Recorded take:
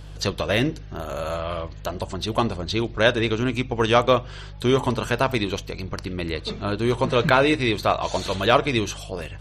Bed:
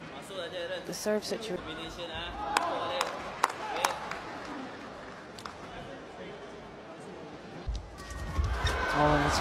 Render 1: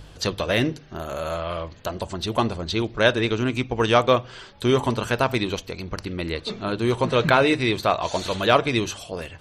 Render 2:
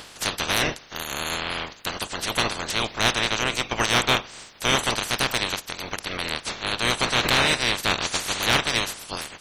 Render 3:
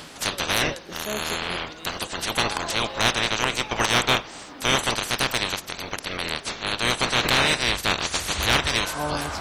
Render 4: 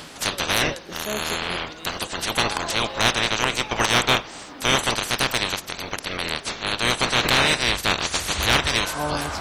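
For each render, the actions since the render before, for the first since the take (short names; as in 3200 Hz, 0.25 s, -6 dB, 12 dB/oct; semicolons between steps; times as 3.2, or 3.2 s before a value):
de-hum 50 Hz, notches 3
spectral limiter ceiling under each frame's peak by 30 dB; soft clip -11 dBFS, distortion -12 dB
add bed -3 dB
gain +1.5 dB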